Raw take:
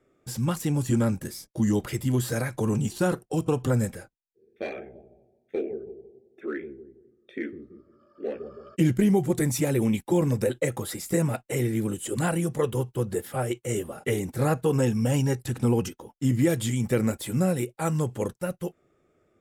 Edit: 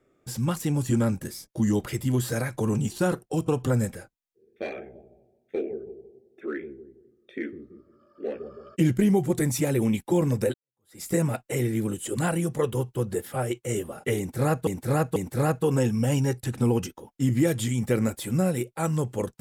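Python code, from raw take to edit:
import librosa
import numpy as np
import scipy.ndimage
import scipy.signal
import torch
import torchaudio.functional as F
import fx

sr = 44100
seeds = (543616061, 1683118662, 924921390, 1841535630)

y = fx.edit(x, sr, fx.fade_in_span(start_s=10.54, length_s=0.48, curve='exp'),
    fx.repeat(start_s=14.18, length_s=0.49, count=3), tone=tone)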